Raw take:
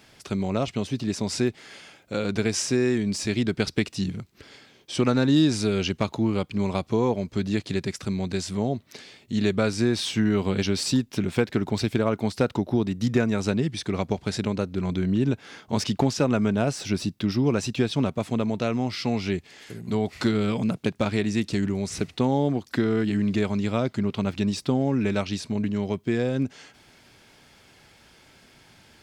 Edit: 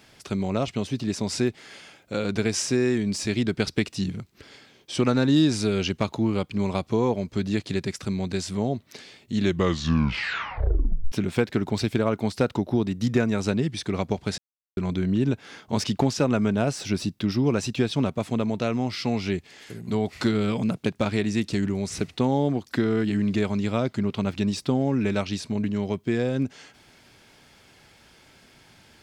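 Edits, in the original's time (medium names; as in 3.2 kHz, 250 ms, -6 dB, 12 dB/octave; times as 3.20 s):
9.37 s: tape stop 1.75 s
14.38–14.77 s: mute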